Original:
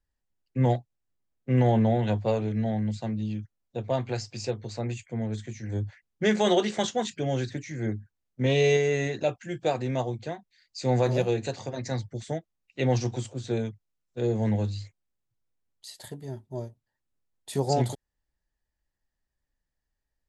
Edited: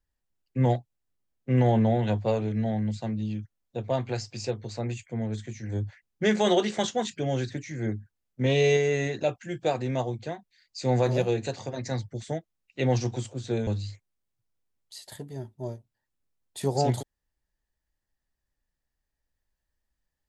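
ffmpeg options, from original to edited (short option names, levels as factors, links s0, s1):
-filter_complex "[0:a]asplit=2[s0][s1];[s0]atrim=end=13.672[s2];[s1]atrim=start=14.588[s3];[s2][s3]acrossfade=d=0.004:c1=hsin:c2=hsin"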